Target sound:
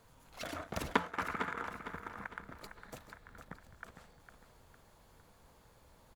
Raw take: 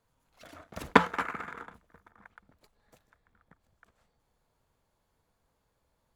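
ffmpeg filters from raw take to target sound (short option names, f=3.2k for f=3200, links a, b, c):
-filter_complex "[0:a]acompressor=threshold=-53dB:ratio=2.5,asplit=2[a][b];[b]aecho=0:1:456|912|1368|1824:0.335|0.134|0.0536|0.0214[c];[a][c]amix=inputs=2:normalize=0,volume=12.5dB"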